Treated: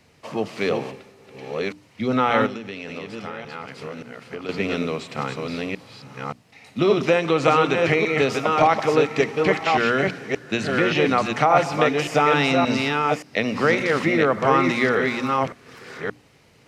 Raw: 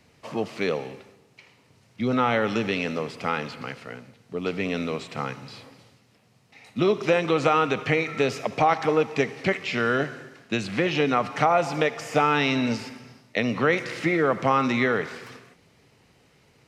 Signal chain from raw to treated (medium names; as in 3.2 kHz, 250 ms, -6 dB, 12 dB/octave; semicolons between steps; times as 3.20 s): chunks repeated in reverse 575 ms, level -3 dB; hum notches 60/120/180/240/300 Hz; 2.46–4.49 s: compression 10:1, threshold -32 dBFS, peak gain reduction 13 dB; trim +2.5 dB